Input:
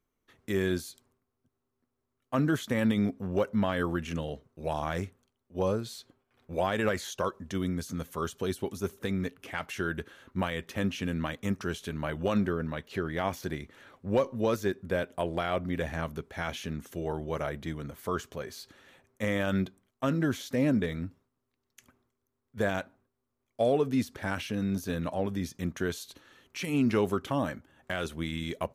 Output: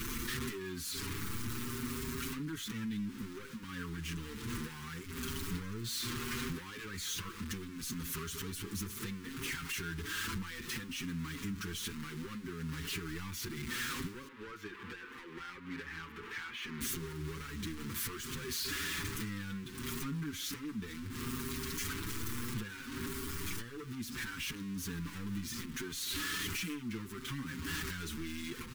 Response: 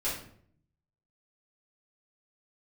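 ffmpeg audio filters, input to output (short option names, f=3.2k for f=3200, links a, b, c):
-filter_complex "[0:a]aeval=exprs='val(0)+0.5*0.0282*sgn(val(0))':c=same,asettb=1/sr,asplit=3[a][b][c];[a]atrim=end=14.284[d];[b]atrim=start=14.28:end=16.81,asetpts=PTS-STARTPTS,afade=t=in:d=0.004:c=qsin,afade=t=out:st=2.526:d=0.004:c=qsin,acrossover=split=370 2900:gain=0.141 1 0.0891[e][f][g];[e][f][g]amix=inputs=3:normalize=0[h];[c]atrim=start=16.806[i];[d][h]acrossfade=d=0.004:c1=hsin:c2=qsin[j];[j][i]acrossfade=d=0.004:c1=qsin:c2=hsin,acompressor=threshold=-37dB:ratio=12,asoftclip=type=hard:threshold=-39dB,asuperstop=centerf=640:order=4:qfactor=0.79,asplit=2[k][l];[l]adelay=6.3,afreqshift=0.67[m];[k][m]amix=inputs=2:normalize=1,volume=5.5dB"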